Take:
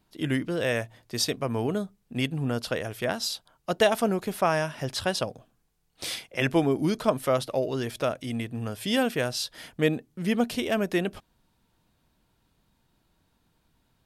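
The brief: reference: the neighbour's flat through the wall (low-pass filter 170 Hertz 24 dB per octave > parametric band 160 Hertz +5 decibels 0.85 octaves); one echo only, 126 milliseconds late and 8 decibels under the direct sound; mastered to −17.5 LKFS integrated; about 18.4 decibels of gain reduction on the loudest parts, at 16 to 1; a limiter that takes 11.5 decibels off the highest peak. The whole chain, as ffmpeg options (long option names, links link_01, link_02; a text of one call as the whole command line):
ffmpeg -i in.wav -af "acompressor=threshold=-35dB:ratio=16,alimiter=level_in=7dB:limit=-24dB:level=0:latency=1,volume=-7dB,lowpass=frequency=170:width=0.5412,lowpass=frequency=170:width=1.3066,equalizer=frequency=160:width_type=o:width=0.85:gain=5,aecho=1:1:126:0.398,volume=29dB" out.wav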